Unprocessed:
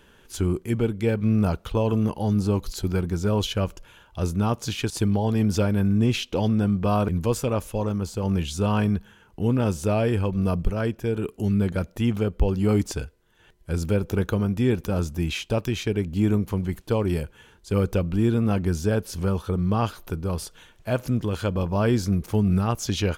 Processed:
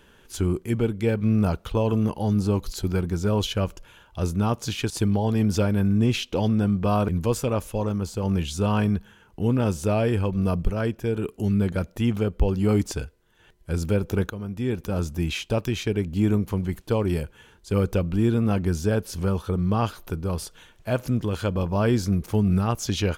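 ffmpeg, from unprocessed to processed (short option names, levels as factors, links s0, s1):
-filter_complex "[0:a]asplit=2[s0][s1];[s0]atrim=end=14.3,asetpts=PTS-STARTPTS,afade=t=out:st=14.296:d=0.004:c=hsin:silence=0.223872[s2];[s1]atrim=start=14.3,asetpts=PTS-STARTPTS,afade=t=in:d=0.81:silence=0.223872[s3];[s2][s3]concat=n=2:v=0:a=1"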